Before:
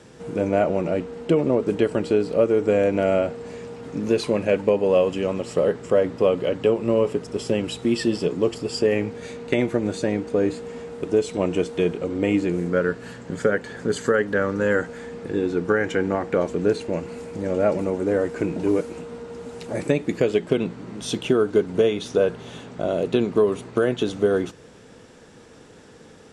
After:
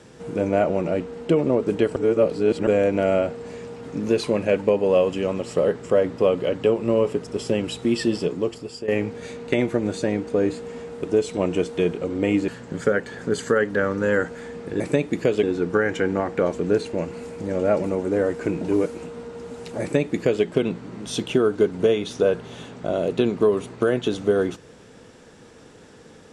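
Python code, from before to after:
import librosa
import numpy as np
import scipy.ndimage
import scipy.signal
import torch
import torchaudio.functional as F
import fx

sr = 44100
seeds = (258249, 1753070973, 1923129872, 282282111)

y = fx.edit(x, sr, fx.reverse_span(start_s=1.96, length_s=0.71),
    fx.fade_out_to(start_s=8.17, length_s=0.71, floor_db=-13.5),
    fx.cut(start_s=12.48, length_s=0.58),
    fx.duplicate(start_s=19.76, length_s=0.63, to_s=15.38), tone=tone)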